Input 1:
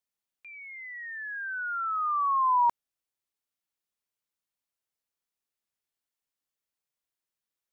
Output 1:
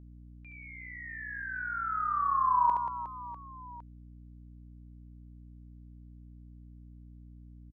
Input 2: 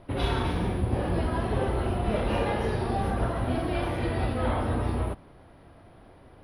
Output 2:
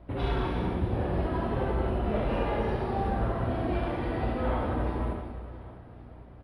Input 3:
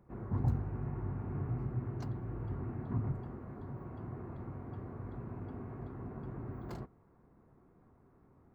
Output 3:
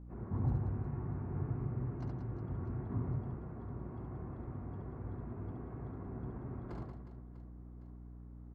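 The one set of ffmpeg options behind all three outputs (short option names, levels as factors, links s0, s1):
-af "aemphasis=mode=reproduction:type=75fm,aecho=1:1:70|182|361.2|647.9|1107:0.631|0.398|0.251|0.158|0.1,aeval=exprs='val(0)+0.00562*(sin(2*PI*60*n/s)+sin(2*PI*2*60*n/s)/2+sin(2*PI*3*60*n/s)/3+sin(2*PI*4*60*n/s)/4+sin(2*PI*5*60*n/s)/5)':c=same,volume=0.631"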